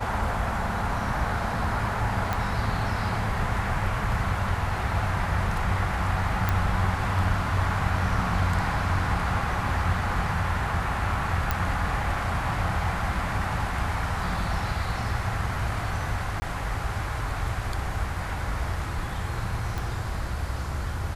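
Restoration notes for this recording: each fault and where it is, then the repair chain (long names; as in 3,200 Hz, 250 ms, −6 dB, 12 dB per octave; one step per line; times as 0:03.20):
0:02.33: click −13 dBFS
0:06.49: click
0:11.51: click −10 dBFS
0:16.40–0:16.42: drop-out 20 ms
0:19.78: click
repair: click removal
repair the gap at 0:16.40, 20 ms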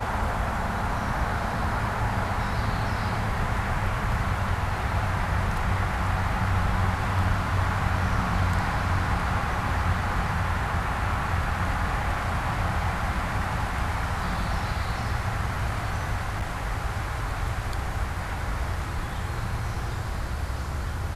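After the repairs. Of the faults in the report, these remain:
0:02.33: click
0:19.78: click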